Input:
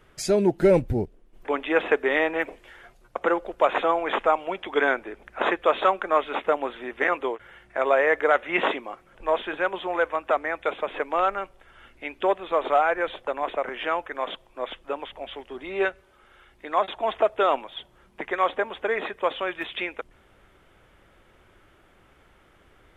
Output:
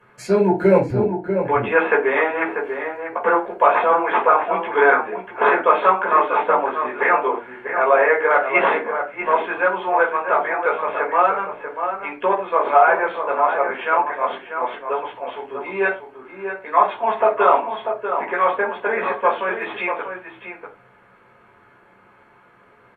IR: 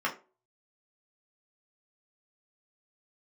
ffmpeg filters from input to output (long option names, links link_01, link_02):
-filter_complex "[0:a]asplit=2[link_01][link_02];[link_02]adelay=641.4,volume=-7dB,highshelf=frequency=4000:gain=-14.4[link_03];[link_01][link_03]amix=inputs=2:normalize=0[link_04];[1:a]atrim=start_sample=2205,atrim=end_sample=4410,asetrate=34839,aresample=44100[link_05];[link_04][link_05]afir=irnorm=-1:irlink=0,volume=-4dB"